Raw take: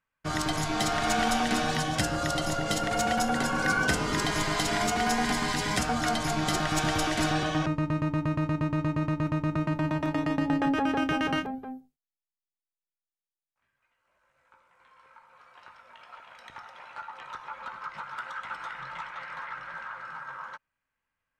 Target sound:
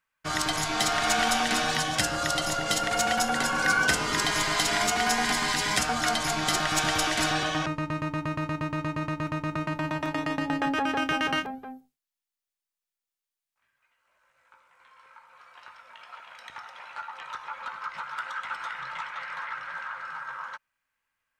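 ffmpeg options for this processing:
-af "tiltshelf=f=660:g=-5"

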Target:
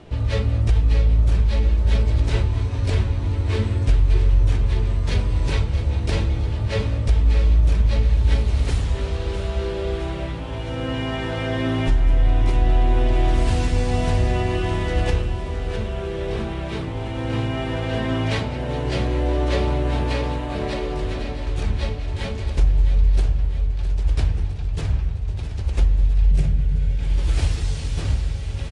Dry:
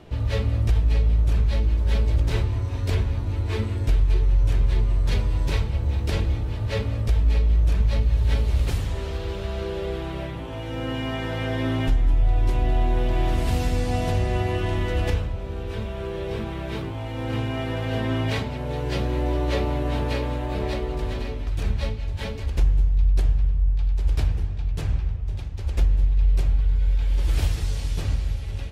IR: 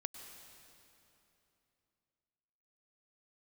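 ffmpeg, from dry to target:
-filter_complex "[0:a]asettb=1/sr,asplit=3[a][b][c];[a]atrim=end=26.314[d];[b]atrim=start=26.31:end=27.03,asetpts=PTS-STARTPTS,afade=t=in:d=0.004:c=qsin,afade=t=out:st=0.716:d=0.004:c=qsin,equalizer=f=160:t=o:w=0.67:g=12,equalizer=f=1k:t=o:w=0.67:g=-10,equalizer=f=4k:t=o:w=0.67:g=-5[e];[c]atrim=start=27.026[f];[d][e]acrossfade=d=0.004:c1=hsin:c2=qsin[g];[g][f]acrossfade=d=0.004:c1=qsin:c2=hsin,asplit=2[h][i];[i]aecho=0:1:660|1320|1980|2640|3300|3960|4620:0.282|0.169|0.101|0.0609|0.0365|0.0219|0.0131[j];[h][j]amix=inputs=2:normalize=0,volume=2.5dB" -ar 22050 -c:a aac -b:a 48k

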